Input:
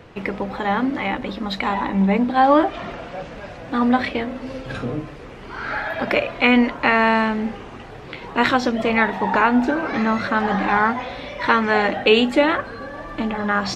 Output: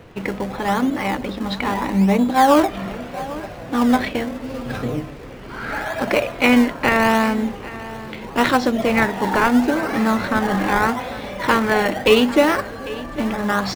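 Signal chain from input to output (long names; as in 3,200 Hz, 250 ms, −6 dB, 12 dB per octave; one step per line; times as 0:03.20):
in parallel at −7.5 dB: sample-and-hold swept by an LFO 24×, swing 100% 0.78 Hz
on the sum: single-tap delay 797 ms −17 dB
level −1 dB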